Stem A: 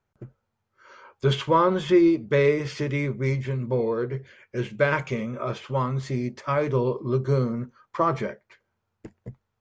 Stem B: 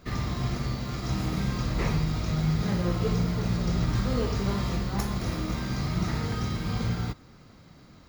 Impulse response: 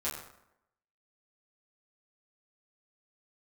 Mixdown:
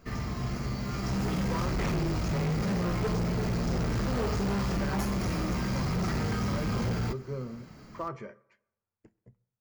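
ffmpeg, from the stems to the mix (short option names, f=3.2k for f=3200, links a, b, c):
-filter_complex "[0:a]volume=-19.5dB,asplit=2[a][b];[b]volume=-20dB[c];[1:a]flanger=delay=4.4:depth=1.1:regen=71:speed=0.27:shape=triangular,volume=1.5dB[d];[2:a]atrim=start_sample=2205[e];[c][e]afir=irnorm=-1:irlink=0[f];[a][d][f]amix=inputs=3:normalize=0,equalizer=f=3.7k:w=5.2:g=-10.5,dynaudnorm=f=270:g=7:m=5.5dB,asoftclip=type=hard:threshold=-26.5dB"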